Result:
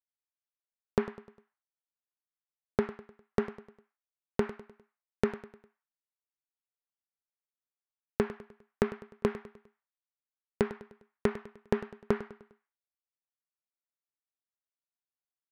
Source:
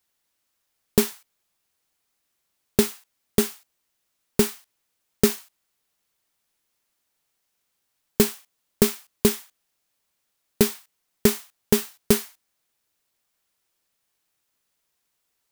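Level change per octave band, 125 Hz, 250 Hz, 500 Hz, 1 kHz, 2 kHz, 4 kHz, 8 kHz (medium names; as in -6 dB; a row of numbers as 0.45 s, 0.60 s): -9.0 dB, -10.0 dB, -7.5 dB, -2.5 dB, -7.5 dB, -21.0 dB, under -25 dB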